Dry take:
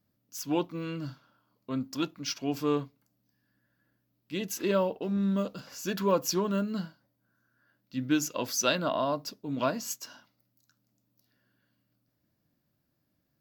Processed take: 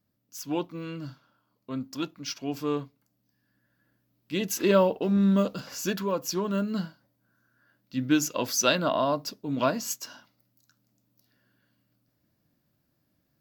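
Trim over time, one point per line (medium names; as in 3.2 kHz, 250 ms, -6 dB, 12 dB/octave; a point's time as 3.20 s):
2.74 s -1 dB
4.77 s +6 dB
5.83 s +6 dB
6.10 s -3.5 dB
6.77 s +3.5 dB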